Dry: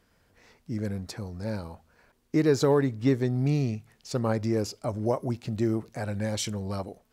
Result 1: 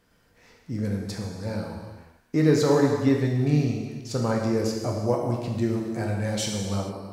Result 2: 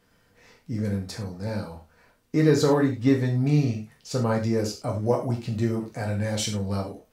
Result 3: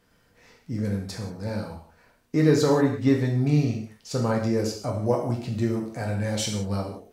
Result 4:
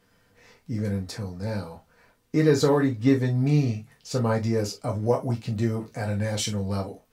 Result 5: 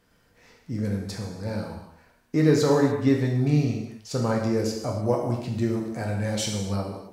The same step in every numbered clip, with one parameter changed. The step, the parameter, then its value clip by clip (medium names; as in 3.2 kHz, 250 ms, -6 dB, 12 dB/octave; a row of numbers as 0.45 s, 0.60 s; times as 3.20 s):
gated-style reverb, gate: 480 ms, 130 ms, 210 ms, 80 ms, 320 ms